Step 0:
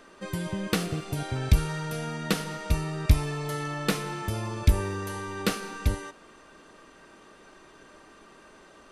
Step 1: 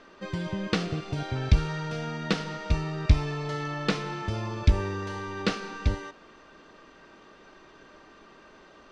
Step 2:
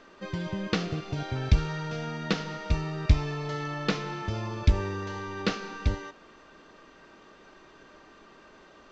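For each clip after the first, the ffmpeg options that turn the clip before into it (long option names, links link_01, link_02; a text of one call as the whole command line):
ffmpeg -i in.wav -af "lowpass=frequency=5700:width=0.5412,lowpass=frequency=5700:width=1.3066" out.wav
ffmpeg -i in.wav -af "volume=-1dB" -ar 16000 -c:a pcm_alaw out.wav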